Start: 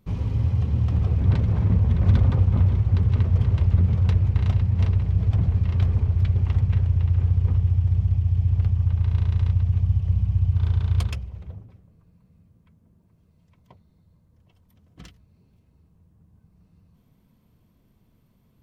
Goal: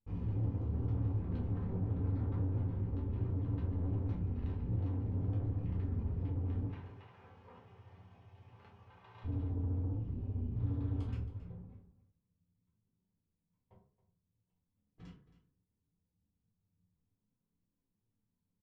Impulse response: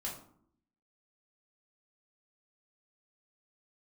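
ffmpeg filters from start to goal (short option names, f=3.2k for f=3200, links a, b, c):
-filter_complex "[0:a]lowpass=f=1.4k:p=1,agate=range=-18dB:threshold=-50dB:ratio=16:detection=peak,asettb=1/sr,asplit=3[a][b][c];[a]atrim=end=6.664[d];[b]atrim=start=6.66:end=9.24,asetpts=PTS-STARTPTS,afade=t=in:d=0.004:c=qsin,afade=t=out:st=2.576:d=0.004:c=qsin,highpass=650[e];[c]atrim=start=9.236[f];[d][e]acrossfade=d=0.004:c1=hsin:c2=qsin[g];[g][f]acrossfade=d=0.004:c1=qsin:c2=hsin,alimiter=limit=-13dB:level=0:latency=1:release=88,flanger=delay=3.5:depth=8.3:regen=-30:speed=0.68:shape=sinusoidal,asoftclip=type=tanh:threshold=-31dB,asplit=2[h][i];[i]adelay=29,volume=-11dB[j];[h][j]amix=inputs=2:normalize=0,aecho=1:1:272:0.158[k];[1:a]atrim=start_sample=2205,asetrate=61740,aresample=44100[l];[k][l]afir=irnorm=-1:irlink=0,volume=-1.5dB"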